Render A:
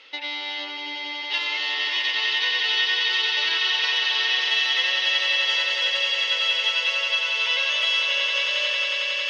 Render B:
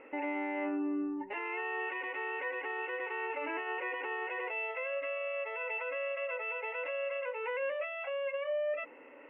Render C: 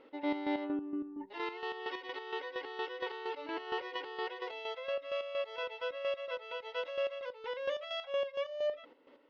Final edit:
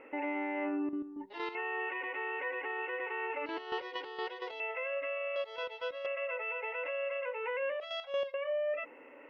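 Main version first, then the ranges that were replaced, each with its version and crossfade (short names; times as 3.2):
B
0.89–1.55 from C
3.46–4.6 from C
5.36–6.06 from C
7.8–8.34 from C
not used: A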